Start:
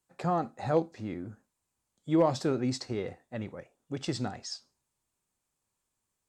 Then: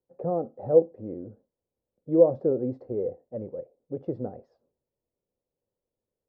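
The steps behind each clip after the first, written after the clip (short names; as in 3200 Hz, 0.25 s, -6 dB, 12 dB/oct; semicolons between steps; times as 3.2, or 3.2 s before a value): synth low-pass 510 Hz, resonance Q 4.9; gain -3 dB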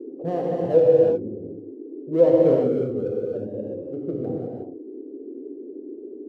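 Wiener smoothing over 25 samples; non-linear reverb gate 0.39 s flat, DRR -4 dB; band noise 260–430 Hz -37 dBFS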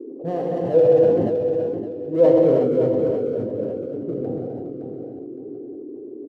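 on a send: feedback echo 0.564 s, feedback 30%, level -7.5 dB; on the sum: sustainer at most 31 dB/s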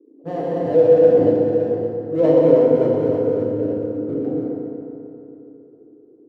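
gate -28 dBFS, range -16 dB; bell 1800 Hz +4 dB 1.7 oct; FDN reverb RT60 3 s, high-frequency decay 0.5×, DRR -1 dB; gain -2.5 dB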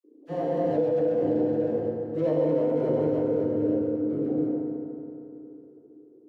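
limiter -12.5 dBFS, peak gain reduction 11 dB; resonator 76 Hz, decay 0.19 s, harmonics all, mix 70%; dispersion lows, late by 41 ms, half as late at 1300 Hz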